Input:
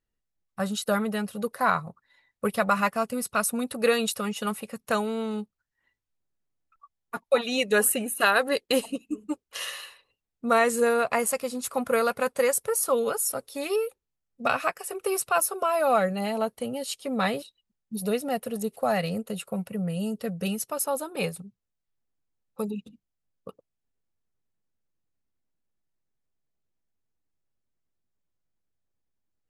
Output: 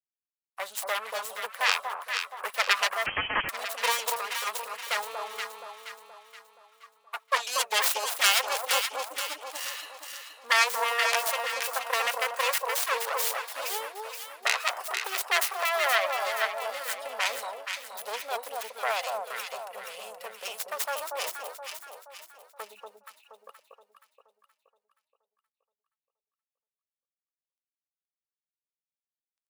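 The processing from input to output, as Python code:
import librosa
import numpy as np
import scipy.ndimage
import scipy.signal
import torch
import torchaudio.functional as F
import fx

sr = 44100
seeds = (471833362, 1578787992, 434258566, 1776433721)

y = fx.self_delay(x, sr, depth_ms=0.56)
y = fx.quant_dither(y, sr, seeds[0], bits=12, dither='none')
y = scipy.signal.sosfilt(scipy.signal.butter(4, 680.0, 'highpass', fs=sr, output='sos'), y)
y = fx.echo_alternate(y, sr, ms=237, hz=1100.0, feedback_pct=66, wet_db=-2.0)
y = fx.freq_invert(y, sr, carrier_hz=3700, at=(3.06, 3.49))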